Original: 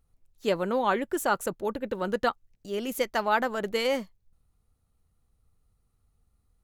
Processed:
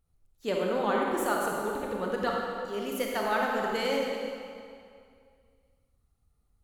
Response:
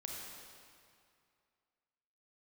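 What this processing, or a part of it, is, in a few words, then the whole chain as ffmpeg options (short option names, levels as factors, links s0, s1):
stairwell: -filter_complex "[1:a]atrim=start_sample=2205[s0];[0:a][s0]afir=irnorm=-1:irlink=0"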